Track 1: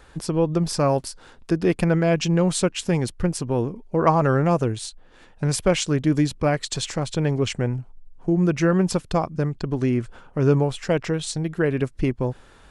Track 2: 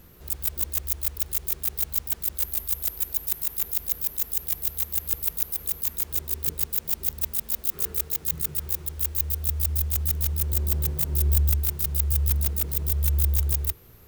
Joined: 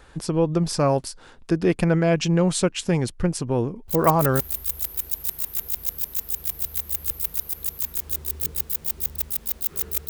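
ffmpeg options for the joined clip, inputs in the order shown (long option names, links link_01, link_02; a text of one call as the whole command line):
ffmpeg -i cue0.wav -i cue1.wav -filter_complex "[0:a]apad=whole_dur=10.09,atrim=end=10.09,atrim=end=4.4,asetpts=PTS-STARTPTS[link_01];[1:a]atrim=start=1.91:end=8.12,asetpts=PTS-STARTPTS[link_02];[link_01][link_02]acrossfade=duration=0.52:curve1=log:curve2=log" out.wav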